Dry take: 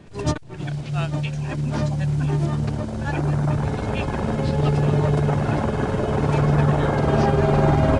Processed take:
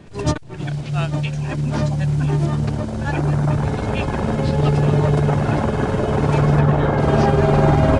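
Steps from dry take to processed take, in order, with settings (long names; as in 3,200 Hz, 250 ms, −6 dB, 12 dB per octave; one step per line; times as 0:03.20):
0:06.59–0:07.00: low-pass filter 3,100 Hz 6 dB per octave
level +3 dB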